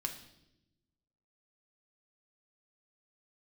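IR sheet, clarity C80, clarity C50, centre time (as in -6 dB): 12.0 dB, 9.0 dB, 16 ms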